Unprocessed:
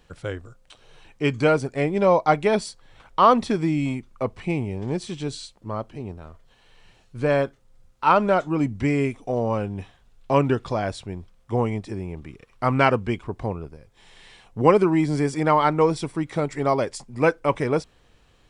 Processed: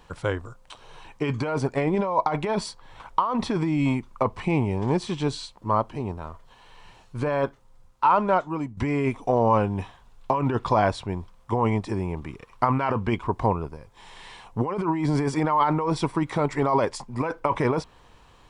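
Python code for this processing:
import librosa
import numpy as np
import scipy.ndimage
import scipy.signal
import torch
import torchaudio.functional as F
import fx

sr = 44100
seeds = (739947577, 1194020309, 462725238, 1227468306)

y = fx.edit(x, sr, fx.fade_out_to(start_s=7.28, length_s=1.49, floor_db=-14.0), tone=tone)
y = fx.dynamic_eq(y, sr, hz=8500.0, q=0.81, threshold_db=-50.0, ratio=4.0, max_db=-6)
y = fx.over_compress(y, sr, threshold_db=-24.0, ratio=-1.0)
y = fx.peak_eq(y, sr, hz=980.0, db=11.0, octaves=0.55)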